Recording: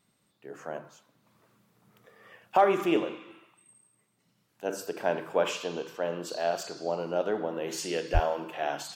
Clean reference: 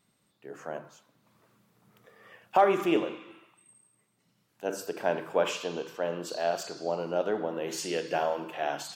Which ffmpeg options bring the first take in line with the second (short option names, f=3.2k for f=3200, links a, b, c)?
-filter_complex "[0:a]asplit=3[a][b][c];[a]afade=t=out:st=8.13:d=0.02[d];[b]highpass=f=140:w=0.5412,highpass=f=140:w=1.3066,afade=t=in:st=8.13:d=0.02,afade=t=out:st=8.25:d=0.02[e];[c]afade=t=in:st=8.25:d=0.02[f];[d][e][f]amix=inputs=3:normalize=0"